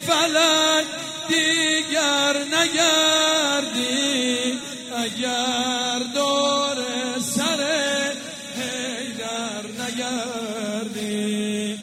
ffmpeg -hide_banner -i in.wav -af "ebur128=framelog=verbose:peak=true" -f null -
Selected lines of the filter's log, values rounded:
Integrated loudness:
  I:         -21.0 LUFS
  Threshold: -31.1 LUFS
Loudness range:
  LRA:         8.1 LU
  Threshold: -41.2 LUFS
  LRA low:   -26.3 LUFS
  LRA high:  -18.2 LUFS
True peak:
  Peak:       -5.8 dBFS